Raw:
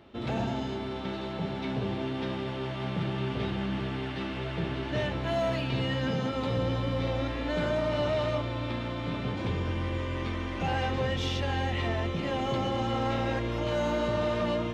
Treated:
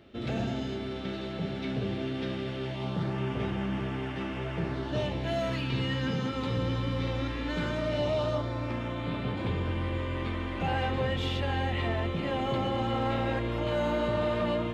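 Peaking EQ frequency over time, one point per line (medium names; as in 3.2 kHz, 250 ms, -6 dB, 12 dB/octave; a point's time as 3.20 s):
peaking EQ -10.5 dB 0.49 oct
2.63 s 940 Hz
3.20 s 4.1 kHz
4.56 s 4.1 kHz
5.58 s 660 Hz
7.74 s 660 Hz
8.22 s 2 kHz
9.10 s 5.8 kHz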